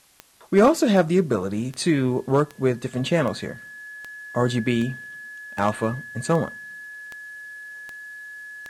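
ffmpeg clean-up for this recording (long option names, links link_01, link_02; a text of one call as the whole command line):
ffmpeg -i in.wav -af "adeclick=threshold=4,bandreject=frequency=1700:width=30,agate=range=-21dB:threshold=-33dB" out.wav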